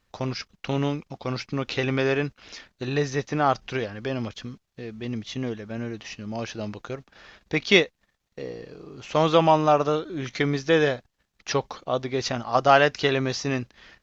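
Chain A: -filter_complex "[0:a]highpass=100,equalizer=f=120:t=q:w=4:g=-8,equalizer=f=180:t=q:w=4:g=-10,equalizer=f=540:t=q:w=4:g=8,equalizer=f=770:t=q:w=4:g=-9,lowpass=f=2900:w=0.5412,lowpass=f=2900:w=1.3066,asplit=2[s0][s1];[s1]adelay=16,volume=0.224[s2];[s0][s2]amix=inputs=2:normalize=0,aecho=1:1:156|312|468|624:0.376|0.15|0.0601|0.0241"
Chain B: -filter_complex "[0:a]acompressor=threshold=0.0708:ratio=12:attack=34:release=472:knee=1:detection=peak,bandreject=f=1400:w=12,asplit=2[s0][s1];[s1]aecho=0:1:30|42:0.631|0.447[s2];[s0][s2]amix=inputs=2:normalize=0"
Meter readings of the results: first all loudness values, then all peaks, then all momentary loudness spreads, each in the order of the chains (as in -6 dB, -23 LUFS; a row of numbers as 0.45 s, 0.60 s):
-23.5 LUFS, -27.5 LUFS; -2.5 dBFS, -8.0 dBFS; 18 LU, 13 LU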